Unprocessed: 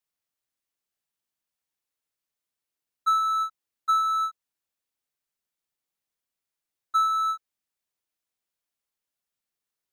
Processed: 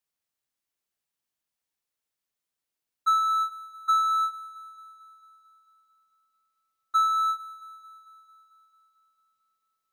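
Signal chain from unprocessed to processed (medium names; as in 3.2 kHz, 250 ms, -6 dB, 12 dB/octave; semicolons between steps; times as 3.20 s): feedback echo behind a high-pass 223 ms, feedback 65%, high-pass 1.6 kHz, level -16 dB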